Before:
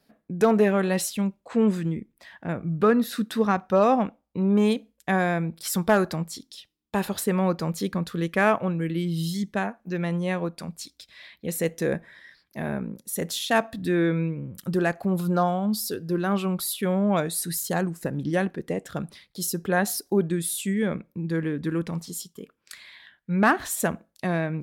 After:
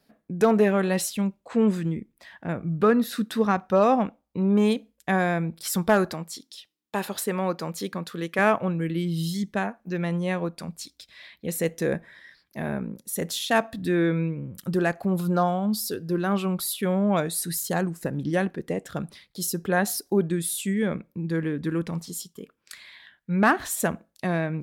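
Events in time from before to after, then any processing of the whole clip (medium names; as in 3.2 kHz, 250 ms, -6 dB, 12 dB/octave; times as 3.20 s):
6.13–8.39 s: high-pass 320 Hz 6 dB/octave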